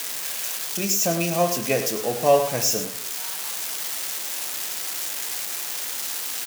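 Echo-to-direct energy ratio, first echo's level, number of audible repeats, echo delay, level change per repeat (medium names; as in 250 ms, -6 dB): -11.0 dB, -11.0 dB, 1, 102 ms, no regular repeats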